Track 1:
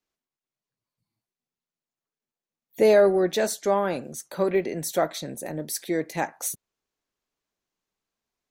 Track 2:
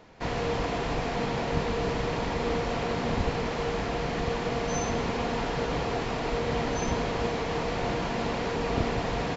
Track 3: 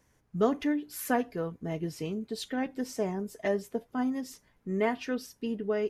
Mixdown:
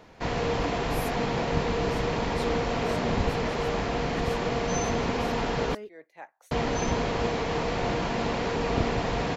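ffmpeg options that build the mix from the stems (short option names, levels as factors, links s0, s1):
-filter_complex "[0:a]acrossover=split=460 3500:gain=0.158 1 0.158[s0][s1][s2];[s0][s1][s2]amix=inputs=3:normalize=0,tremolo=f=4.5:d=0.58,volume=0.178[s3];[1:a]volume=1.19,asplit=3[s4][s5][s6];[s4]atrim=end=5.75,asetpts=PTS-STARTPTS,afade=t=out:st=5.746:d=0.004:c=hsin[s7];[s5]atrim=start=5.75:end=6.51,asetpts=PTS-STARTPTS,volume=0[s8];[s6]atrim=start=6.51,asetpts=PTS-STARTPTS,afade=t=in:d=0.004:c=hsin[s9];[s7][s8][s9]concat=n=3:v=0:a=1[s10];[2:a]acompressor=threshold=0.0224:ratio=6,volume=0.596[s11];[s3][s10][s11]amix=inputs=3:normalize=0"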